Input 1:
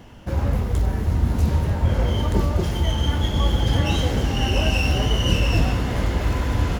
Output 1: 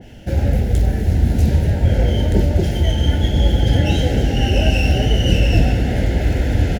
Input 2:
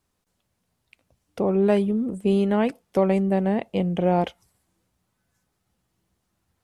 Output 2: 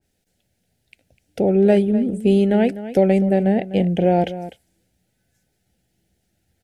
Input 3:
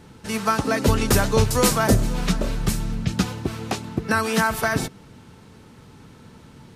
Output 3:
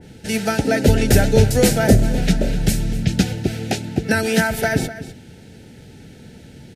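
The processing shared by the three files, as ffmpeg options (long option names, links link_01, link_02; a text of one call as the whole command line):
ffmpeg -i in.wav -filter_complex "[0:a]asuperstop=centerf=1100:order=4:qfactor=1.5,asplit=2[link_01][link_02];[link_02]adelay=250.7,volume=-14dB,highshelf=frequency=4000:gain=-5.64[link_03];[link_01][link_03]amix=inputs=2:normalize=0,adynamicequalizer=threshold=0.0112:dfrequency=2300:dqfactor=0.7:tfrequency=2300:tqfactor=0.7:attack=5:release=100:ratio=0.375:range=2.5:mode=cutabove:tftype=highshelf,volume=5dB" out.wav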